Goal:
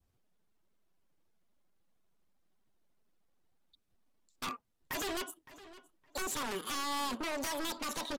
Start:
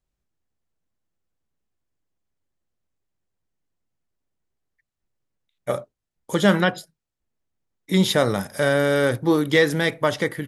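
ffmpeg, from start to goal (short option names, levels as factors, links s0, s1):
-filter_complex "[0:a]adynamicequalizer=threshold=0.0282:dfrequency=800:dqfactor=1:tfrequency=800:tqfactor=1:attack=5:release=100:ratio=0.375:range=2:mode=cutabove:tftype=bell,acompressor=threshold=0.0251:ratio=6,aresample=16000,aeval=exprs='0.0178*(abs(mod(val(0)/0.0178+3,4)-2)-1)':c=same,aresample=44100,atempo=0.64,asplit=2[s0][s1];[s1]aeval=exprs='(mod(53.1*val(0)+1,2)-1)/53.1':c=same,volume=0.316[s2];[s0][s2]amix=inputs=2:normalize=0,asplit=2[s3][s4];[s4]adelay=1128,lowpass=f=2200:p=1,volume=0.15,asplit=2[s5][s6];[s6]adelay=1128,lowpass=f=2200:p=1,volume=0.21[s7];[s3][s5][s7]amix=inputs=3:normalize=0,asetrate=88200,aresample=44100,volume=1.19"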